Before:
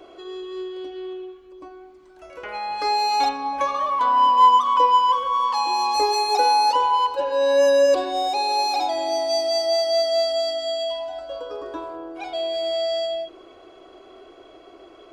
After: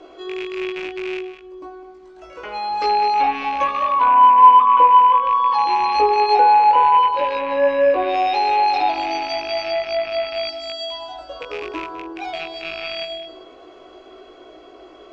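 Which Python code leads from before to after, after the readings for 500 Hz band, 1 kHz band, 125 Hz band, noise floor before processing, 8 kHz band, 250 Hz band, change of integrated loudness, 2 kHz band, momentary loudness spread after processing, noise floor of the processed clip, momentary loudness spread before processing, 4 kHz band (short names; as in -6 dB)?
-0.5 dB, +5.5 dB, n/a, -48 dBFS, under -10 dB, +3.5 dB, +4.0 dB, +5.5 dB, 19 LU, -44 dBFS, 17 LU, -3.0 dB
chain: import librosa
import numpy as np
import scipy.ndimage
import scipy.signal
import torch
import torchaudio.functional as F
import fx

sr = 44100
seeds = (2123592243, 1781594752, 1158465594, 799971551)

y = fx.rattle_buzz(x, sr, strikes_db=-43.0, level_db=-21.0)
y = fx.env_lowpass_down(y, sr, base_hz=2200.0, full_db=-14.5)
y = scipy.signal.sosfilt(scipy.signal.butter(4, 7500.0, 'lowpass', fs=sr, output='sos'), y)
y = fx.env_lowpass_down(y, sr, base_hz=2900.0, full_db=-17.5)
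y = fx.peak_eq(y, sr, hz=92.0, db=-7.5, octaves=0.29)
y = fx.doubler(y, sr, ms=19.0, db=-3.0)
y = y + 10.0 ** (-13.0 / 20.0) * np.pad(y, (int(204 * sr / 1000.0), 0))[:len(y)]
y = y * 10.0 ** (1.5 / 20.0)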